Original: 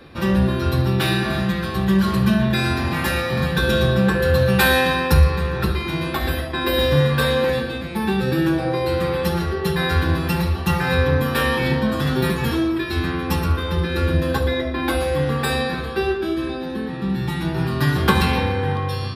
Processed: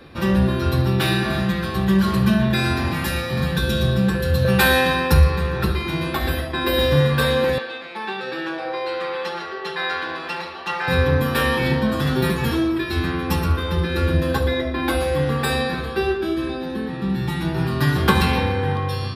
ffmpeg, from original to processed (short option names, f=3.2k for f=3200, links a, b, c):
-filter_complex "[0:a]asettb=1/sr,asplit=3[a][b][c];[a]atrim=end=2.914[d];[b]atrim=start=2.91:end=4.45,asetpts=PTS-STARTPTS,afade=t=in:d=0.004:c=qsin,afade=t=out:st=1.536:d=0.004:c=qsin,acrossover=split=280|3000[e][f][g];[f]acompressor=threshold=-25dB:ratio=6:attack=3.2:release=140:knee=2.83:detection=peak[h];[e][h][g]amix=inputs=3:normalize=0[i];[c]atrim=start=4.446[j];[d][i]acrossfade=d=0.004:c1=hsin:c2=qsin[k];[k][j]acrossfade=d=0.004:c1=qsin:c2=hsin,asettb=1/sr,asplit=3[l][m][n];[l]atrim=end=7.584[o];[m]atrim=start=7.58:end=10.88,asetpts=PTS-STARTPTS,afade=t=in:d=0.004:c=qsin,afade=t=out:st=3.296:d=0.004:c=qsin,highpass=590,lowpass=4.6k[p];[n]atrim=start=10.876[q];[o][p]acrossfade=d=0.004:c1=hsin:c2=qsin[r];[r][q]acrossfade=d=0.004:c1=qsin:c2=hsin"